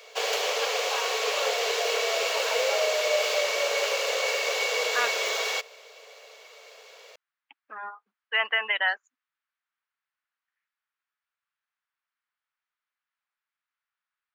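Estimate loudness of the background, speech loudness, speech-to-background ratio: −25.5 LKFS, −27.0 LKFS, −1.5 dB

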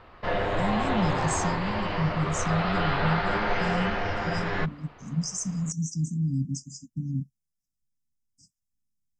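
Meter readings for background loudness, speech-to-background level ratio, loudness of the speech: −28.5 LKFS, −2.5 dB, −31.0 LKFS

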